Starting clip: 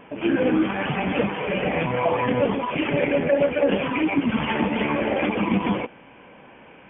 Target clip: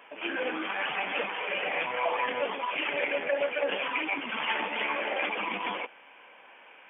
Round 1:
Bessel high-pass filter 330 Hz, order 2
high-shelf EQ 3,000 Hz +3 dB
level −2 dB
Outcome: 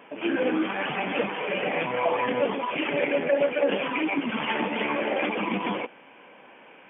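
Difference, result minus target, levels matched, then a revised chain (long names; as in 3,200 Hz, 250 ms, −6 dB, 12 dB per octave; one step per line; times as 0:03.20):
250 Hz band +9.0 dB
Bessel high-pass filter 900 Hz, order 2
high-shelf EQ 3,000 Hz +3 dB
level −2 dB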